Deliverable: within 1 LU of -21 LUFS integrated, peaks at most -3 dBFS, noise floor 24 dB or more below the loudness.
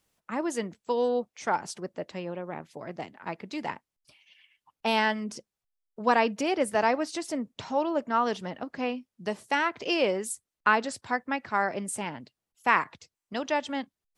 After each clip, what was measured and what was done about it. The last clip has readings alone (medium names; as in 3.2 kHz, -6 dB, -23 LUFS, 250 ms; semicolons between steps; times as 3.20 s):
loudness -29.5 LUFS; peak level -7.5 dBFS; loudness target -21.0 LUFS
-> trim +8.5 dB; peak limiter -3 dBFS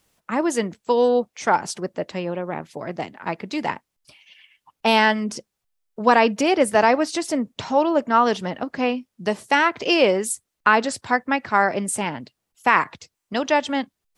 loudness -21.5 LUFS; peak level -3.0 dBFS; noise floor -80 dBFS